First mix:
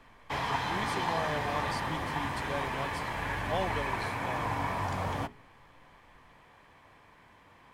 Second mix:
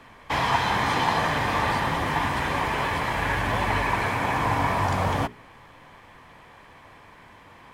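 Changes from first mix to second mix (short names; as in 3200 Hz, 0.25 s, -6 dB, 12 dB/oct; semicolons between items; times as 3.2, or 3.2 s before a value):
background +12.0 dB; reverb: off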